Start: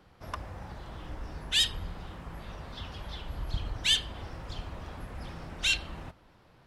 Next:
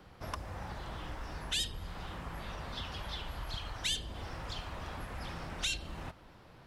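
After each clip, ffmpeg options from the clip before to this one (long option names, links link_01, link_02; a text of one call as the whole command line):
ffmpeg -i in.wav -filter_complex "[0:a]acrossover=split=700|4500[link_01][link_02][link_03];[link_01]acompressor=threshold=-44dB:ratio=4[link_04];[link_02]acompressor=threshold=-44dB:ratio=4[link_05];[link_03]acompressor=threshold=-41dB:ratio=4[link_06];[link_04][link_05][link_06]amix=inputs=3:normalize=0,volume=3.5dB" out.wav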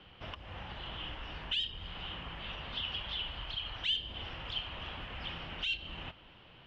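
ffmpeg -i in.wav -af "alimiter=level_in=7dB:limit=-24dB:level=0:latency=1:release=200,volume=-7dB,lowpass=frequency=3000:width_type=q:width=7.6,volume=-3dB" out.wav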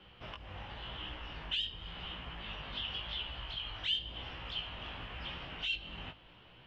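ffmpeg -i in.wav -af "flanger=delay=16:depth=3.7:speed=0.92,volume=1.5dB" out.wav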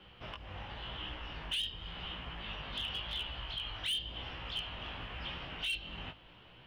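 ffmpeg -i in.wav -af "asoftclip=type=hard:threshold=-31.5dB,volume=1dB" out.wav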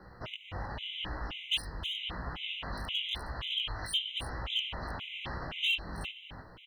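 ffmpeg -i in.wav -af "aecho=1:1:314:0.355,afftfilt=real='re*gt(sin(2*PI*1.9*pts/sr)*(1-2*mod(floor(b*sr/1024/2000),2)),0)':imag='im*gt(sin(2*PI*1.9*pts/sr)*(1-2*mod(floor(b*sr/1024/2000),2)),0)':win_size=1024:overlap=0.75,volume=6.5dB" out.wav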